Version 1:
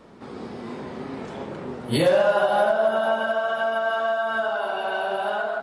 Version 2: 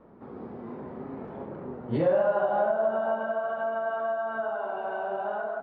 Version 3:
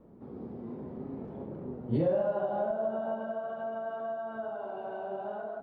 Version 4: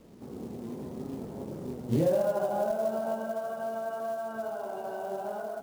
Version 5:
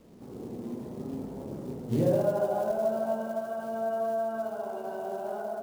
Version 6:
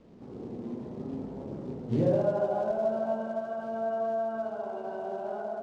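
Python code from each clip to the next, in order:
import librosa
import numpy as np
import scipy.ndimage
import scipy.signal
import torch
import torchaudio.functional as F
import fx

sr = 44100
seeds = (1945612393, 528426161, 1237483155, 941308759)

y1 = scipy.signal.sosfilt(scipy.signal.butter(2, 1200.0, 'lowpass', fs=sr, output='sos'), x)
y1 = y1 * 10.0 ** (-4.5 / 20.0)
y2 = fx.peak_eq(y1, sr, hz=1500.0, db=-13.5, octaves=2.7)
y2 = y2 * 10.0 ** (1.5 / 20.0)
y3 = fx.quant_companded(y2, sr, bits=6)
y3 = y3 * 10.0 ** (2.0 / 20.0)
y4 = fx.echo_wet_lowpass(y3, sr, ms=71, feedback_pct=66, hz=860.0, wet_db=-3.5)
y4 = y4 * 10.0 ** (-1.5 / 20.0)
y5 = fx.air_absorb(y4, sr, metres=130.0)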